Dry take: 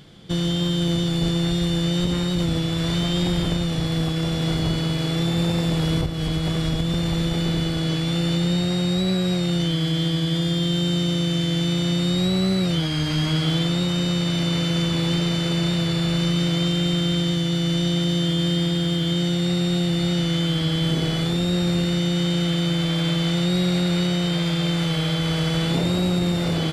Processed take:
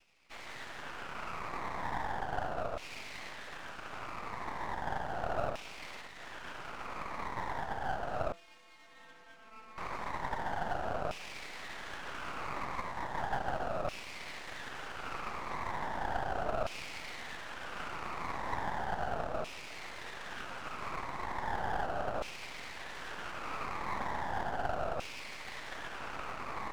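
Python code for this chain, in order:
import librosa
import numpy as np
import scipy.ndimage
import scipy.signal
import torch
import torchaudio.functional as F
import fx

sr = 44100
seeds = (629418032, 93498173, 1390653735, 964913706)

y = fx.echo_wet_highpass(x, sr, ms=851, feedback_pct=77, hz=1700.0, wet_db=-8.5)
y = fx.noise_vocoder(y, sr, seeds[0], bands=2)
y = fx.filter_lfo_bandpass(y, sr, shape='saw_down', hz=0.36, low_hz=610.0, high_hz=2600.0, q=4.9)
y = fx.stiff_resonator(y, sr, f0_hz=160.0, decay_s=0.48, stiffness=0.008, at=(8.32, 9.78))
y = np.maximum(y, 0.0)
y = y * librosa.db_to_amplitude(-2.0)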